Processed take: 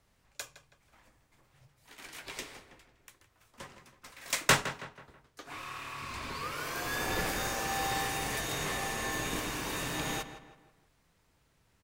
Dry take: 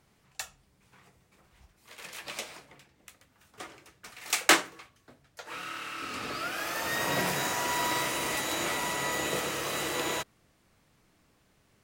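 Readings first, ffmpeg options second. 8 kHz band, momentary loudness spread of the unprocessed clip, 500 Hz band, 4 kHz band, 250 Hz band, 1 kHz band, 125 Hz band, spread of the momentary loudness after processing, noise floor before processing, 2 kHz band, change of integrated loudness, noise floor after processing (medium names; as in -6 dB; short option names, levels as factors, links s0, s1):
-3.5 dB, 19 LU, -4.0 dB, -4.0 dB, -3.0 dB, -3.0 dB, +2.5 dB, 19 LU, -68 dBFS, -3.5 dB, -3.5 dB, -71 dBFS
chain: -filter_complex "[0:a]afreqshift=-190,asplit=2[s0][s1];[s1]adelay=162,lowpass=f=3100:p=1,volume=0.266,asplit=2[s2][s3];[s3]adelay=162,lowpass=f=3100:p=1,volume=0.43,asplit=2[s4][s5];[s5]adelay=162,lowpass=f=3100:p=1,volume=0.43,asplit=2[s6][s7];[s7]adelay=162,lowpass=f=3100:p=1,volume=0.43[s8];[s0][s2][s4][s6][s8]amix=inputs=5:normalize=0,aeval=exprs='0.531*(cos(1*acos(clip(val(0)/0.531,-1,1)))-cos(1*PI/2))+0.015*(cos(4*acos(clip(val(0)/0.531,-1,1)))-cos(4*PI/2))':c=same,volume=0.668"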